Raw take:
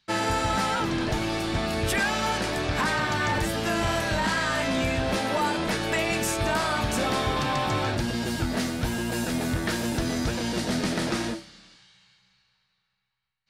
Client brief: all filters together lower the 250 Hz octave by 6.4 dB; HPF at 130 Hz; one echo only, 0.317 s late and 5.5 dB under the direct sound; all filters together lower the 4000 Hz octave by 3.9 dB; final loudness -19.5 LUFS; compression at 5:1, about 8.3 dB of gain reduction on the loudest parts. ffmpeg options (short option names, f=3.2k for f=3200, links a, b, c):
-af "highpass=130,equalizer=f=250:t=o:g=-8,equalizer=f=4k:t=o:g=-5,acompressor=threshold=-33dB:ratio=5,aecho=1:1:317:0.531,volume=15dB"